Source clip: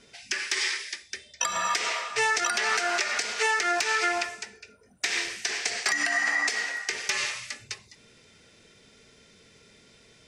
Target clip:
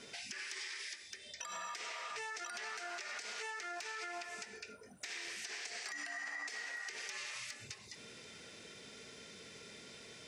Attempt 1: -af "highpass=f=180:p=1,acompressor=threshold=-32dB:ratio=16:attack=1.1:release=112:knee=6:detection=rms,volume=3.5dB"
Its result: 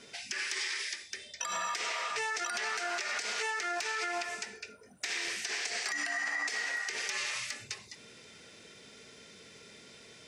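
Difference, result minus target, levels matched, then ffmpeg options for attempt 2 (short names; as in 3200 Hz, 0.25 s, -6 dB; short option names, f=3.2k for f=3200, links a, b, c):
compressor: peak gain reduction -9.5 dB
-af "highpass=f=180:p=1,acompressor=threshold=-42dB:ratio=16:attack=1.1:release=112:knee=6:detection=rms,volume=3.5dB"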